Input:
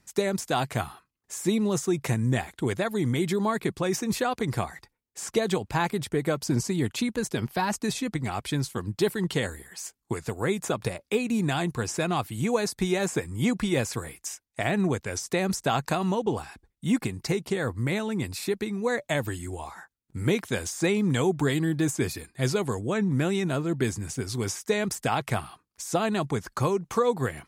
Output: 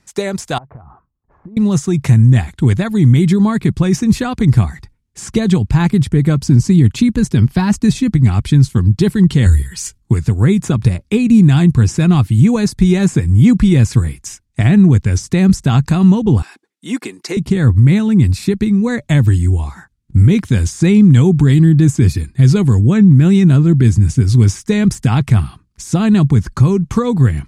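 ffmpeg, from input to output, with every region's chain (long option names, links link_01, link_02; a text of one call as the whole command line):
ffmpeg -i in.wav -filter_complex "[0:a]asettb=1/sr,asplit=3[link_01][link_02][link_03];[link_01]atrim=end=0.584[link_04];[link_02]atrim=start=0.58:end=1.57,asetpts=PTS-STARTPTS,afade=type=in:duration=0.004:curve=qsin,afade=type=out:start_time=0.986:duration=0.004:curve=qsin,lowpass=frequency=1100:width=0.5412,lowpass=frequency=1100:width=1.3066,equalizer=frequency=120:width_type=o:width=2.6:gain=-5,acompressor=threshold=-42dB:ratio=20:attack=3.2:release=140:knee=1:detection=peak[link_05];[link_03]atrim=start=1.566[link_06];[link_04][link_05]acrossfade=duration=0.004:curve1=hsin:curve2=qsin[link_07];[link_07][link_06]acrossfade=duration=0.004:curve1=qsin:curve2=hsin,asettb=1/sr,asplit=3[link_08][link_09][link_10];[link_08]atrim=end=9.464[link_11];[link_09]atrim=start=9.46:end=9.98,asetpts=PTS-STARTPTS,afade=type=in:duration=0.004:curve=qsin,afade=type=out:start_time=0.516:duration=0.004:curve=qsin,equalizer=frequency=590:width_type=o:width=2.5:gain=-10,aecho=1:1:2.1:0.42,atrim=end_sample=22932,acontrast=68[link_12];[link_10]atrim=start=9.976[link_13];[link_11][link_12]acrossfade=duration=0.004:curve1=hsin:curve2=qsin[link_14];[link_14][link_13]acrossfade=duration=0.004:curve1=qsin:curve2=hsin,asettb=1/sr,asplit=3[link_15][link_16][link_17];[link_15]atrim=end=16.424[link_18];[link_16]atrim=start=16.42:end=17.37,asetpts=PTS-STARTPTS,afade=type=in:duration=0.004:curve=qsin,afade=type=out:start_time=0.946:duration=0.004:curve=qsin,highpass=frequency=360:width=0.5412,highpass=frequency=360:width=1.3066,bandreject=frequency=810:width=21[link_19];[link_17]atrim=start=17.366[link_20];[link_18][link_19]acrossfade=duration=0.004:curve1=hsin:curve2=qsin[link_21];[link_21][link_20]acrossfade=duration=0.004:curve1=qsin:curve2=hsin,lowpass=10000,asubboost=boost=11.5:cutoff=170,alimiter=level_in=8dB:limit=-1dB:release=50:level=0:latency=1,volume=-1dB" out.wav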